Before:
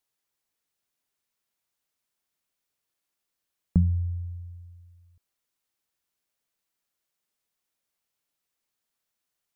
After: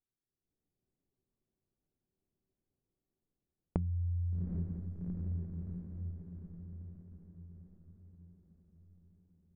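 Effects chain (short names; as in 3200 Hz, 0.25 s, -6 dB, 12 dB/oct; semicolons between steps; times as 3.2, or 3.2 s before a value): low shelf 470 Hz +6 dB; resonator 380 Hz, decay 0.22 s, harmonics all, mix 70%; low-pass opened by the level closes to 320 Hz, open at -33.5 dBFS; dynamic EQ 360 Hz, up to +4 dB, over -50 dBFS, Q 2.8; AGC gain up to 12 dB; diffused feedback echo 0.772 s, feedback 52%, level -15 dB; compressor 10:1, threshold -36 dBFS, peak gain reduction 25.5 dB; Doppler distortion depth 0.39 ms; gain +4 dB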